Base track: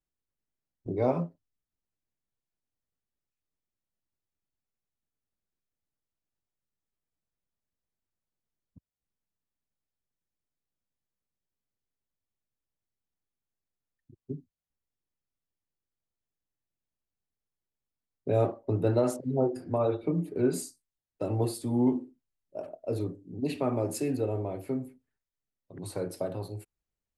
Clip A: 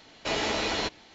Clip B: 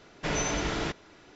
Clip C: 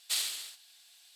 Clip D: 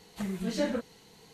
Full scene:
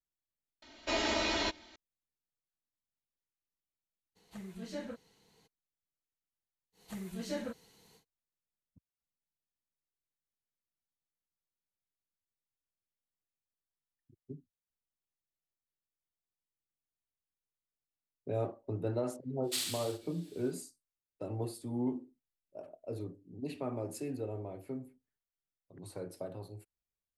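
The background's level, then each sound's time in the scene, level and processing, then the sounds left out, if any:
base track -9 dB
0.62 s: replace with A -6 dB + comb 3.2 ms, depth 85%
4.15 s: add D -12 dB, fades 0.02 s
6.72 s: add D -8.5 dB, fades 0.10 s + treble shelf 8.5 kHz +8.5 dB
19.42 s: add C -4 dB, fades 0.10 s
not used: B

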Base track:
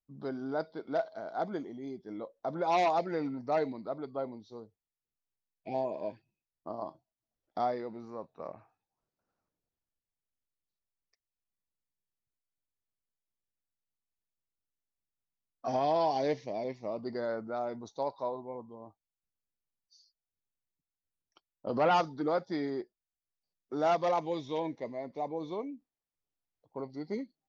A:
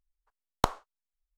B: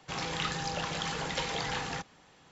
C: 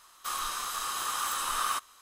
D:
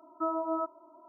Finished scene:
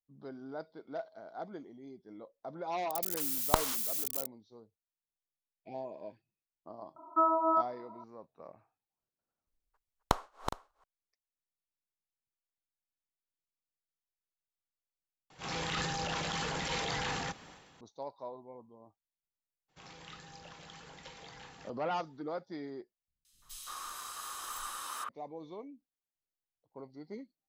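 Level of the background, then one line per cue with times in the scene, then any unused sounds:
base track -8.5 dB
2.90 s: add A -3 dB + zero-crossing glitches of -19.5 dBFS
6.96 s: add D -3 dB + peaking EQ 1.2 kHz +10.5 dB 1.5 oct
9.47 s: add A -3.5 dB + backward echo that repeats 207 ms, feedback 46%, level -7.5 dB
15.30 s: replace with B -1 dB + transient shaper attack -12 dB, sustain +7 dB
19.68 s: add B -17.5 dB, fades 0.02 s
23.08 s: replace with C -9 dB + three bands offset in time lows, highs, mids 170/340 ms, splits 170/2700 Hz

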